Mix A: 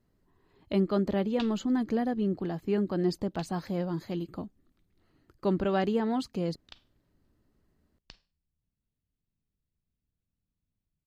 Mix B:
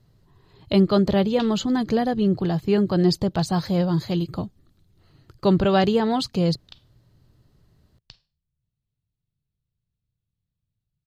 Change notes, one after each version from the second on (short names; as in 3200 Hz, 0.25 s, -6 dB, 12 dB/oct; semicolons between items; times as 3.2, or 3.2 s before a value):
speech +9.5 dB; master: add graphic EQ 125/250/2000/4000 Hz +11/-7/-3/+7 dB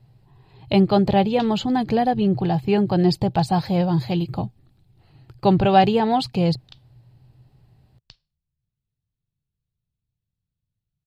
speech: add thirty-one-band EQ 125 Hz +11 dB, 800 Hz +11 dB, 1250 Hz -4 dB, 2500 Hz +7 dB, 6300 Hz -9 dB, 12500 Hz -3 dB; background: send -8.5 dB